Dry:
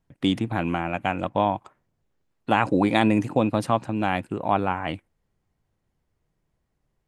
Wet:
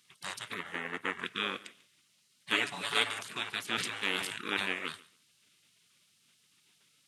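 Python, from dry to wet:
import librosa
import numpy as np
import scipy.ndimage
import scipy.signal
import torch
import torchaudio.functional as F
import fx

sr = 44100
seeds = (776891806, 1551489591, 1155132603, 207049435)

y = fx.bin_compress(x, sr, power=0.6)
y = scipy.signal.sosfilt(scipy.signal.butter(2, 630.0, 'highpass', fs=sr, output='sos'), y)
y = fx.spec_gate(y, sr, threshold_db=-15, keep='weak')
y = fx.high_shelf_res(y, sr, hz=2200.0, db=-7.5, q=1.5, at=(0.54, 1.25))
y = fx.comb(y, sr, ms=7.0, depth=0.71, at=(2.53, 3.11))
y = fx.echo_feedback(y, sr, ms=143, feedback_pct=18, wet_db=-21.5)
y = fx.sustainer(y, sr, db_per_s=47.0, at=(3.67, 4.73))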